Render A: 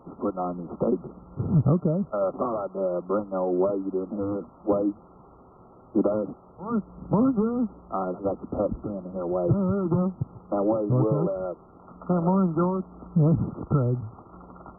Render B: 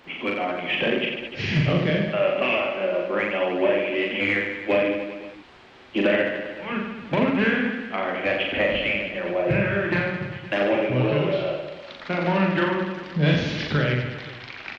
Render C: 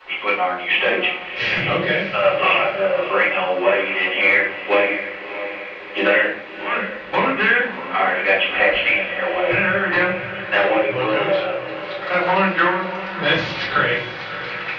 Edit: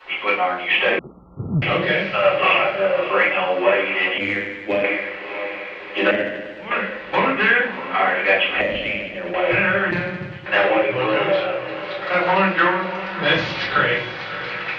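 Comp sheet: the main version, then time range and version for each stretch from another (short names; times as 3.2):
C
0.99–1.62 from A
4.18–4.84 from B
6.11–6.71 from B
8.61–9.34 from B
9.91–10.46 from B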